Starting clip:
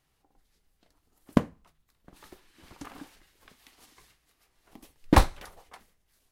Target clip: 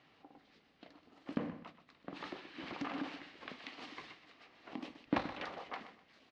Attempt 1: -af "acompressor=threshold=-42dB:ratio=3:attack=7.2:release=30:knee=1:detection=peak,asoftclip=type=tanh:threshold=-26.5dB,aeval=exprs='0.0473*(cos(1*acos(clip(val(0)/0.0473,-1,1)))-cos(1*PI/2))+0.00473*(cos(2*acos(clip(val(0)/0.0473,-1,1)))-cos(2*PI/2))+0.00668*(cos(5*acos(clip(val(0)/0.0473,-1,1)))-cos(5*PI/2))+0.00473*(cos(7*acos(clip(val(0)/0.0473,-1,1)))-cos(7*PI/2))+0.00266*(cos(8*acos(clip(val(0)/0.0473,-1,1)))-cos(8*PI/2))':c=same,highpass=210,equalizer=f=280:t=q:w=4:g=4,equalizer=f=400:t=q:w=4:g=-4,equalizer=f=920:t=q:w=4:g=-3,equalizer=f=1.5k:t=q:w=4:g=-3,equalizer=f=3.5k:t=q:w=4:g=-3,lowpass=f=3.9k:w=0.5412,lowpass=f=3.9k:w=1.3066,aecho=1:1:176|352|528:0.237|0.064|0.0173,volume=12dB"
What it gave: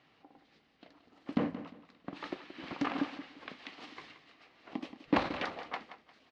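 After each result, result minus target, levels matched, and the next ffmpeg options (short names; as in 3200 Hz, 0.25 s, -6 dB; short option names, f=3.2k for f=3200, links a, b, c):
echo 50 ms late; compressor: peak gain reduction -7.5 dB
-af "acompressor=threshold=-42dB:ratio=3:attack=7.2:release=30:knee=1:detection=peak,asoftclip=type=tanh:threshold=-26.5dB,aeval=exprs='0.0473*(cos(1*acos(clip(val(0)/0.0473,-1,1)))-cos(1*PI/2))+0.00473*(cos(2*acos(clip(val(0)/0.0473,-1,1)))-cos(2*PI/2))+0.00668*(cos(5*acos(clip(val(0)/0.0473,-1,1)))-cos(5*PI/2))+0.00473*(cos(7*acos(clip(val(0)/0.0473,-1,1)))-cos(7*PI/2))+0.00266*(cos(8*acos(clip(val(0)/0.0473,-1,1)))-cos(8*PI/2))':c=same,highpass=210,equalizer=f=280:t=q:w=4:g=4,equalizer=f=400:t=q:w=4:g=-4,equalizer=f=920:t=q:w=4:g=-3,equalizer=f=1.5k:t=q:w=4:g=-3,equalizer=f=3.5k:t=q:w=4:g=-3,lowpass=f=3.9k:w=0.5412,lowpass=f=3.9k:w=1.3066,aecho=1:1:126|252|378:0.237|0.064|0.0173,volume=12dB"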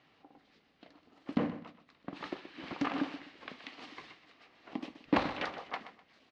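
compressor: peak gain reduction -7.5 dB
-af "acompressor=threshold=-53.5dB:ratio=3:attack=7.2:release=30:knee=1:detection=peak,asoftclip=type=tanh:threshold=-26.5dB,aeval=exprs='0.0473*(cos(1*acos(clip(val(0)/0.0473,-1,1)))-cos(1*PI/2))+0.00473*(cos(2*acos(clip(val(0)/0.0473,-1,1)))-cos(2*PI/2))+0.00668*(cos(5*acos(clip(val(0)/0.0473,-1,1)))-cos(5*PI/2))+0.00473*(cos(7*acos(clip(val(0)/0.0473,-1,1)))-cos(7*PI/2))+0.00266*(cos(8*acos(clip(val(0)/0.0473,-1,1)))-cos(8*PI/2))':c=same,highpass=210,equalizer=f=280:t=q:w=4:g=4,equalizer=f=400:t=q:w=4:g=-4,equalizer=f=920:t=q:w=4:g=-3,equalizer=f=1.5k:t=q:w=4:g=-3,equalizer=f=3.5k:t=q:w=4:g=-3,lowpass=f=3.9k:w=0.5412,lowpass=f=3.9k:w=1.3066,aecho=1:1:126|252|378:0.237|0.064|0.0173,volume=12dB"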